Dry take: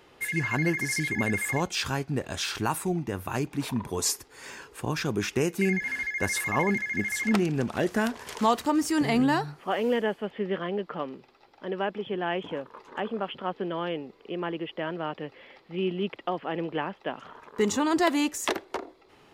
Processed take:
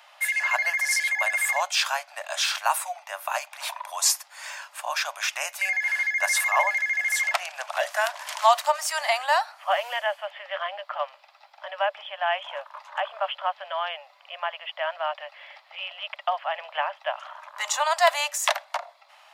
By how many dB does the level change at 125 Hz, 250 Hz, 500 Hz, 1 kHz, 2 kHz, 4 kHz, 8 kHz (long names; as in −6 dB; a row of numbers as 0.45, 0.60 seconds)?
below −40 dB, below −40 dB, −1.0 dB, +6.0 dB, +6.0 dB, +6.5 dB, +6.0 dB